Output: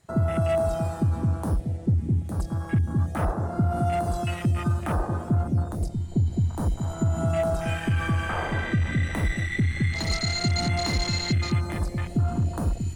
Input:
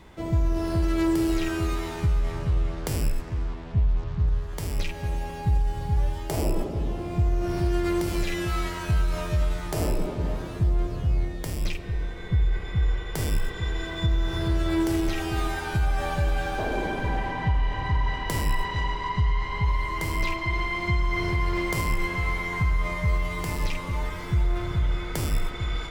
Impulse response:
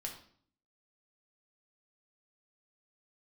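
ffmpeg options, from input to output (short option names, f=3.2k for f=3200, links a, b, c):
-af "afwtdn=0.0355,equalizer=f=4.4k:w=1.6:g=14,asetrate=88200,aresample=44100"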